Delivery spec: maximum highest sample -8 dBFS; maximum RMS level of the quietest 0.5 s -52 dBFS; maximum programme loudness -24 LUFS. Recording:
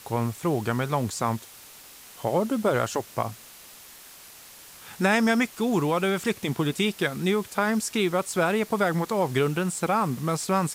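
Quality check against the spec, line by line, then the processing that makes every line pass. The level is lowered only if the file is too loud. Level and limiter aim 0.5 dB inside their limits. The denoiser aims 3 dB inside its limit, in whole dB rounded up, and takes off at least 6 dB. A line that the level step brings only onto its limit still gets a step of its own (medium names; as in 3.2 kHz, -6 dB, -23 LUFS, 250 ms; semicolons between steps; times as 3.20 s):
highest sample -10.0 dBFS: pass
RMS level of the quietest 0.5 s -47 dBFS: fail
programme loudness -25.5 LUFS: pass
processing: noise reduction 8 dB, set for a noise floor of -47 dBFS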